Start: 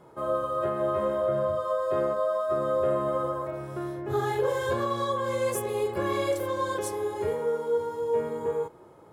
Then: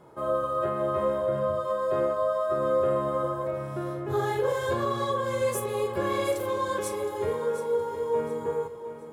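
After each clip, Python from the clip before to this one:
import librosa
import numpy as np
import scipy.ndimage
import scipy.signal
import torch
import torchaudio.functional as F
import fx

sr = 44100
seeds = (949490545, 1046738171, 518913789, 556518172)

y = fx.doubler(x, sr, ms=44.0, db=-13.0)
y = fx.echo_feedback(y, sr, ms=717, feedback_pct=31, wet_db=-12.0)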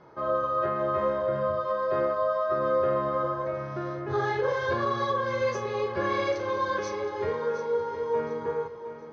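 y = scipy.signal.sosfilt(scipy.signal.cheby1(6, 6, 6300.0, 'lowpass', fs=sr, output='sos'), x)
y = F.gain(torch.from_numpy(y), 4.5).numpy()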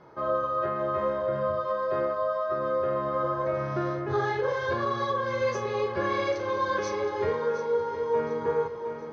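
y = fx.rider(x, sr, range_db=5, speed_s=0.5)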